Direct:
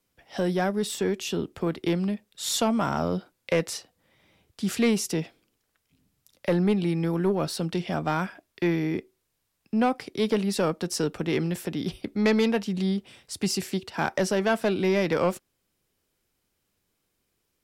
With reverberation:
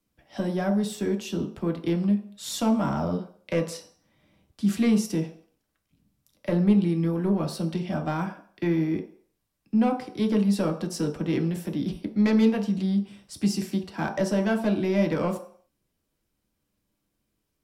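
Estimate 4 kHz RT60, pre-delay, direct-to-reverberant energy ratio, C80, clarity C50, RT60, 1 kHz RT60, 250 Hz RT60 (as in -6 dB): 0.50 s, 3 ms, 2.0 dB, 14.0 dB, 10.5 dB, 0.50 s, 0.50 s, 0.45 s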